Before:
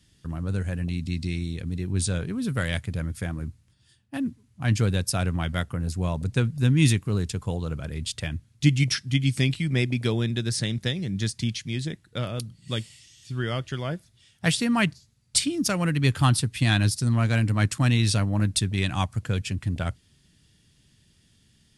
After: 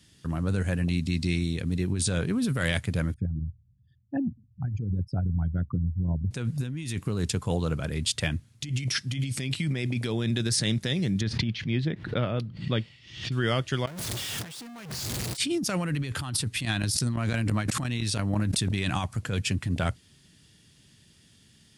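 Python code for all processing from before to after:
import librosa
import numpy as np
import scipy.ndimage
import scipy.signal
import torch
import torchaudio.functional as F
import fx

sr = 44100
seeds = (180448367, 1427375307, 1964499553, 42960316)

y = fx.chain(x, sr, fx.envelope_sharpen(power=3.0),
    fx.lowpass(hz=1000.0, slope=12), at=(3.14, 6.31))
y = fx.chain(y, sr, fx.air_absorb(metres=320.0),
    fx.pre_swell(db_per_s=94.0), at=(11.21, 13.32))
y = fx.chain(y, sr, fx.zero_step(step_db=-32.0),
    fx.leveller(passes=5), at=(13.87, 15.37))
y = fx.chain(y, sr, fx.tremolo_shape(shape='saw_up', hz=5.9, depth_pct=85),
    fx.sustainer(db_per_s=24.0), at=(16.65, 18.71))
y = fx.highpass(y, sr, hz=110.0, slope=6)
y = fx.over_compress(y, sr, threshold_db=-29.0, ratio=-1.0)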